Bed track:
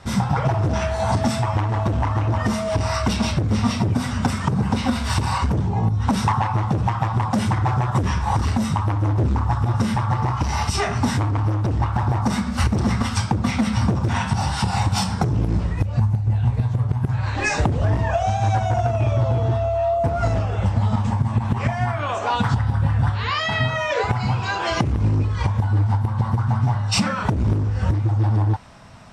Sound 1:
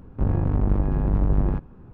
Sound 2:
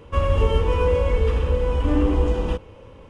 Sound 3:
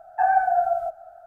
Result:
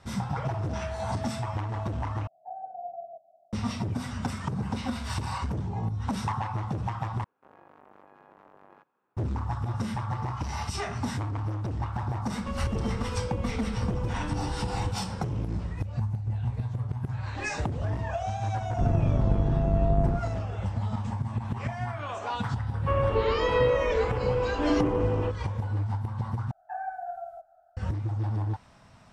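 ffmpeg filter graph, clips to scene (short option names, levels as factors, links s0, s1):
-filter_complex "[3:a]asplit=2[s0][s1];[1:a]asplit=2[s2][s3];[2:a]asplit=2[s4][s5];[0:a]volume=0.299[s6];[s0]asuperpass=centerf=290:order=8:qfactor=0.64[s7];[s2]highpass=830[s8];[s4]acompressor=threshold=0.0282:ratio=6:attack=3.2:release=140:knee=1:detection=peak[s9];[s3]equalizer=f=140:w=1.5:g=5[s10];[s5]acrossover=split=240 2500:gain=0.224 1 0.0891[s11][s12][s13];[s11][s12][s13]amix=inputs=3:normalize=0[s14];[s6]asplit=4[s15][s16][s17][s18];[s15]atrim=end=2.274[s19];[s7]atrim=end=1.26,asetpts=PTS-STARTPTS,volume=0.422[s20];[s16]atrim=start=3.526:end=7.244[s21];[s8]atrim=end=1.93,asetpts=PTS-STARTPTS,volume=0.211[s22];[s17]atrim=start=9.166:end=26.514[s23];[s1]atrim=end=1.26,asetpts=PTS-STARTPTS,volume=0.168[s24];[s18]atrim=start=27.766[s25];[s9]atrim=end=3.09,asetpts=PTS-STARTPTS,volume=0.944,afade=t=in:d=0.004:c=hsin,afade=t=out:st=3.086:d=0.004:c=hsin,adelay=12340[s26];[s10]atrim=end=1.93,asetpts=PTS-STARTPTS,volume=0.562,afade=t=in:d=0.004:c=hsin,afade=t=out:st=1.926:d=0.004:c=hsin,adelay=820260S[s27];[s14]atrim=end=3.09,asetpts=PTS-STARTPTS,volume=0.841,afade=t=in:d=0.004:c=hsin,afade=t=out:st=3.086:d=0.004:c=hsin,adelay=22740[s28];[s19][s20]acrossfade=d=0.004:c1=hsin:c2=hsin[s29];[s29][s21]acrossfade=d=0.004:c1=hsin:c2=hsin[s30];[s30][s22]acrossfade=d=0.004:c1=hsin:c2=hsin[s31];[s31][s23]acrossfade=d=0.004:c1=hsin:c2=hsin[s32];[s32][s24]acrossfade=d=0.004:c1=hsin:c2=hsin[s33];[s33][s25]acrossfade=d=0.004:c1=hsin:c2=hsin[s34];[s34][s26][s27][s28]amix=inputs=4:normalize=0"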